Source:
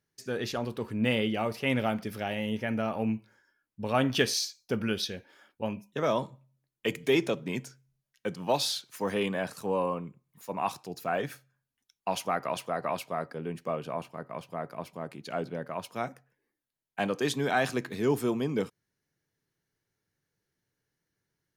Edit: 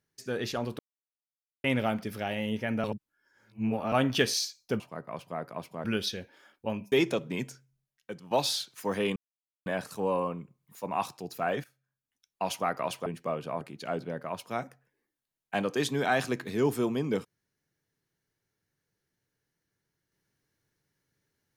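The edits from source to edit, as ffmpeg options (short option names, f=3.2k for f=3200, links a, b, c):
-filter_complex "[0:a]asplit=13[a][b][c][d][e][f][g][h][i][j][k][l][m];[a]atrim=end=0.79,asetpts=PTS-STARTPTS,afade=t=out:st=0.786:d=0.004:c=hsin[n];[b]atrim=start=0.79:end=1.64,asetpts=PTS-STARTPTS,volume=0[o];[c]atrim=start=1.64:end=2.842,asetpts=PTS-STARTPTS,afade=t=in:d=0.004:c=hsin[p];[d]atrim=start=2.838:end=3.922,asetpts=PTS-STARTPTS,areverse[q];[e]atrim=start=3.918:end=4.802[r];[f]atrim=start=14.018:end=15.062[s];[g]atrim=start=4.798:end=5.882[t];[h]atrim=start=7.078:end=8.47,asetpts=PTS-STARTPTS,afade=t=out:st=0.562:d=0.83:silence=0.281838[u];[i]atrim=start=8.47:end=9.32,asetpts=PTS-STARTPTS,afade=t=in:d=0.004:c=hsin:silence=0.281838,afade=t=out:st=0.846:d=0.004:c=hsin,apad=pad_dur=0.5[v];[j]atrim=start=9.32:end=11.3,asetpts=PTS-STARTPTS,afade=t=in:d=0.004:c=hsin,afade=t=out:st=1.976:d=0.004:c=hsin:silence=0.11885[w];[k]atrim=start=11.3:end=12.722,asetpts=PTS-STARTPTS,afade=t=in:d=0.9:silence=0.11885[x];[l]atrim=start=13.468:end=14.022[y];[m]atrim=start=15.058[z];[n][o][p]concat=n=3:v=0:a=1[aa];[aa][q]acrossfade=d=0.004:c1=hsin:c2=hsin[ab];[ab][r]acrossfade=d=0.004:c1=hsin:c2=hsin[ac];[ac][s]acrossfade=d=0.004:c1=hsin:c2=hsin[ad];[ad][t]acrossfade=d=0.004:c1=hsin:c2=hsin[ae];[u][v][w][x]concat=n=4:v=0:a=1[af];[ae][af]acrossfade=d=0.004:c1=hsin:c2=hsin[ag];[ag][y]acrossfade=d=0.004:c1=hsin:c2=hsin[ah];[ah][z]acrossfade=d=0.004:c1=hsin:c2=hsin"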